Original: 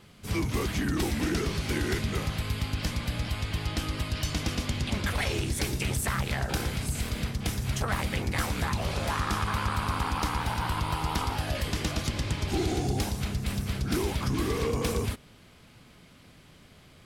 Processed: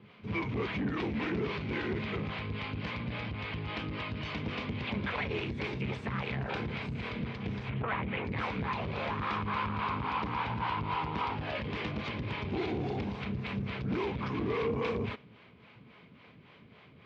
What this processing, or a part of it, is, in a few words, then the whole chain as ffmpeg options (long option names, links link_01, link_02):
guitar amplifier with harmonic tremolo: -filter_complex "[0:a]acrossover=split=400[link_01][link_02];[link_01]aeval=exprs='val(0)*(1-0.7/2+0.7/2*cos(2*PI*3.6*n/s))':channel_layout=same[link_03];[link_02]aeval=exprs='val(0)*(1-0.7/2-0.7/2*cos(2*PI*3.6*n/s))':channel_layout=same[link_04];[link_03][link_04]amix=inputs=2:normalize=0,asoftclip=type=tanh:threshold=-28.5dB,highpass=100,equalizer=frequency=120:width_type=q:width=4:gain=4,equalizer=frequency=210:width_type=q:width=4:gain=5,equalizer=frequency=440:width_type=q:width=4:gain=6,equalizer=frequency=1000:width_type=q:width=4:gain=6,equalizer=frequency=2300:width_type=q:width=4:gain=6,lowpass=frequency=3500:width=0.5412,lowpass=frequency=3500:width=1.3066,asettb=1/sr,asplit=3[link_05][link_06][link_07];[link_05]atrim=end=7.694[link_08];[link_06]atrim=start=7.69:end=8.25,asetpts=PTS-STARTPTS,afade=type=in:duration=0.004:curve=qsin,afade=type=out:start_time=0.556:duration=0.004:curve=qsin,lowpass=frequency=3300:width=0.5412,lowpass=frequency=3300:width=1.3066[link_09];[link_07]atrim=start=8.246[link_10];[link_08][link_09]acrossfade=duration=0.004:curve1=hsin:curve2=qsin[link_11];[link_11][link_10]acrossfade=duration=0.004:curve1=qsin:curve2=hsin"